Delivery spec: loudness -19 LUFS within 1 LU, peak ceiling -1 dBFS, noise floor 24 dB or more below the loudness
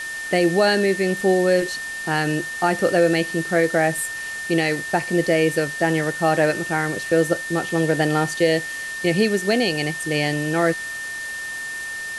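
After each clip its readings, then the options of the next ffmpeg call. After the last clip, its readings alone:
steady tone 1.8 kHz; tone level -28 dBFS; noise floor -30 dBFS; noise floor target -45 dBFS; loudness -21.0 LUFS; peak level -6.0 dBFS; loudness target -19.0 LUFS
-> -af "bandreject=f=1800:w=30"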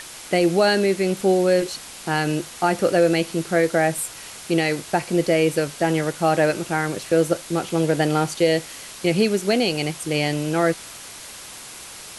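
steady tone not found; noise floor -39 dBFS; noise floor target -46 dBFS
-> -af "afftdn=nr=7:nf=-39"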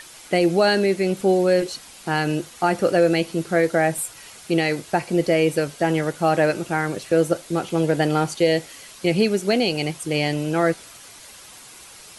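noise floor -44 dBFS; noise floor target -46 dBFS
-> -af "afftdn=nr=6:nf=-44"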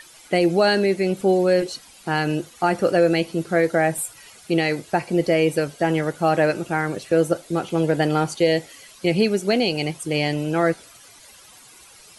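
noise floor -48 dBFS; loudness -21.5 LUFS; peak level -7.0 dBFS; loudness target -19.0 LUFS
-> -af "volume=1.33"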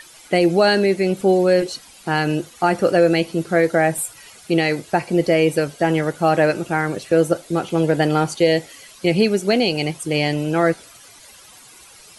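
loudness -19.0 LUFS; peak level -4.5 dBFS; noise floor -46 dBFS

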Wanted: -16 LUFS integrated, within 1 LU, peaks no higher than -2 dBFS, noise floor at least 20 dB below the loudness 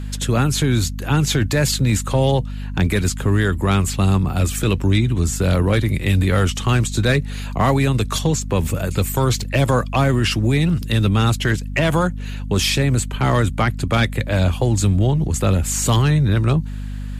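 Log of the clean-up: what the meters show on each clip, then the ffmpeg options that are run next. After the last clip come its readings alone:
hum 50 Hz; highest harmonic 250 Hz; hum level -25 dBFS; loudness -18.5 LUFS; peak level -7.0 dBFS; loudness target -16.0 LUFS
-> -af "bandreject=f=50:t=h:w=4,bandreject=f=100:t=h:w=4,bandreject=f=150:t=h:w=4,bandreject=f=200:t=h:w=4,bandreject=f=250:t=h:w=4"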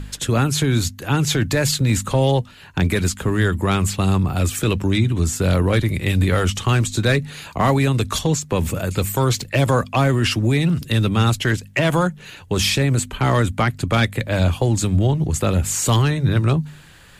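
hum not found; loudness -19.5 LUFS; peak level -6.5 dBFS; loudness target -16.0 LUFS
-> -af "volume=1.5"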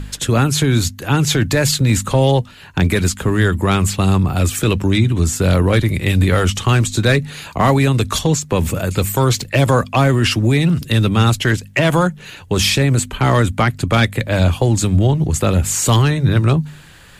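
loudness -16.0 LUFS; peak level -3.0 dBFS; noise floor -40 dBFS

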